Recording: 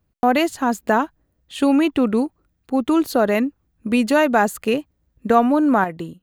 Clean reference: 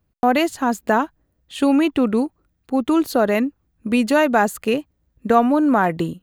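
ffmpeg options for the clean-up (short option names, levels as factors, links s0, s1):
-af "asetnsamples=n=441:p=0,asendcmd='5.84 volume volume 7.5dB',volume=1"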